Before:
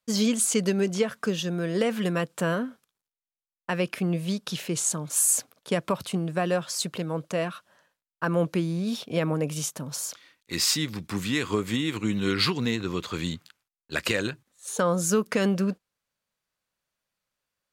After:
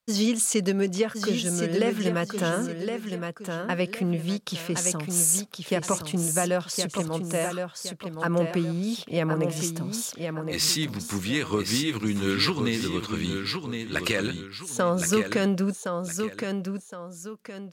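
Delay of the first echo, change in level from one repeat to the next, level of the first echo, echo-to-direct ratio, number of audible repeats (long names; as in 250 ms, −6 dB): 1,066 ms, −9.5 dB, −6.0 dB, −5.5 dB, 2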